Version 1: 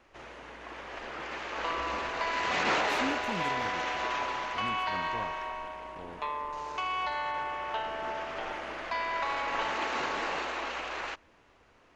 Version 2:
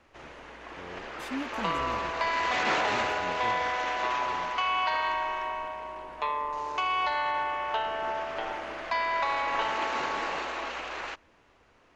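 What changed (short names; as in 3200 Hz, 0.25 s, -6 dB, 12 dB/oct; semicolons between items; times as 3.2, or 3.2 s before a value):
speech: entry -1.70 s; second sound +4.5 dB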